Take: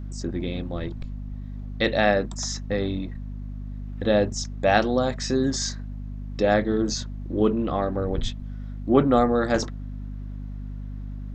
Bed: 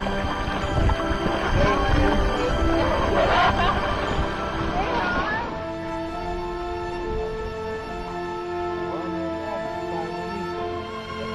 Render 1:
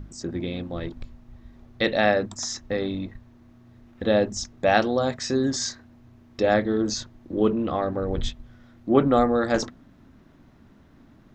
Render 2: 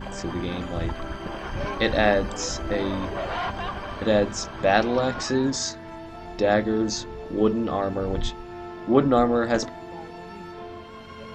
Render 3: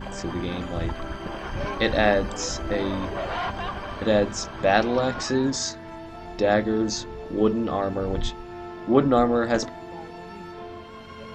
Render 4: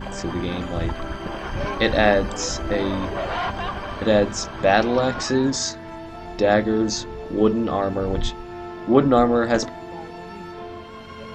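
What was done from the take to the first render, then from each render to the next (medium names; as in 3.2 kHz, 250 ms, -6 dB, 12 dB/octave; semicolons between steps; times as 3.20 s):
hum notches 50/100/150/200/250 Hz
add bed -10 dB
no audible change
trim +3 dB; peak limiter -3 dBFS, peak gain reduction 2 dB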